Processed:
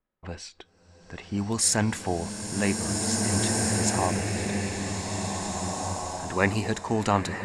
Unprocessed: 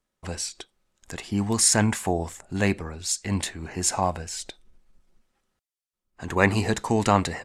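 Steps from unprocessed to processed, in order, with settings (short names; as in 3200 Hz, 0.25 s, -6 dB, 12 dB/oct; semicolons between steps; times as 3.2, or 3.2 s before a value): low-pass opened by the level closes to 2100 Hz, open at -18 dBFS; bloom reverb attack 1.98 s, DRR -1.5 dB; gain -3.5 dB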